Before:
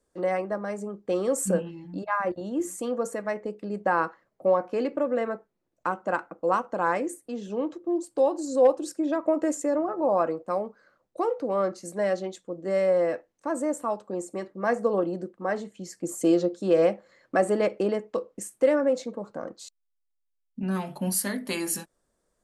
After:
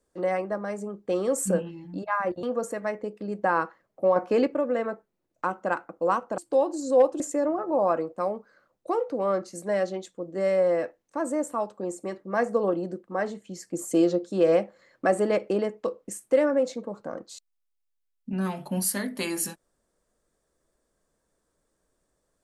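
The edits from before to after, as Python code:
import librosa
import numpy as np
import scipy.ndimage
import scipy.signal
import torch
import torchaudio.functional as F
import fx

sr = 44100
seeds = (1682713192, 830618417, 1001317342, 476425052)

y = fx.edit(x, sr, fx.cut(start_s=2.43, length_s=0.42),
    fx.clip_gain(start_s=4.58, length_s=0.31, db=5.0),
    fx.cut(start_s=6.8, length_s=1.23),
    fx.cut(start_s=8.85, length_s=0.65), tone=tone)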